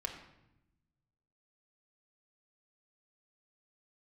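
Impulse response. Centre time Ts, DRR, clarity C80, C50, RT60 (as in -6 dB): 25 ms, 2.0 dB, 9.0 dB, 7.0 dB, 0.90 s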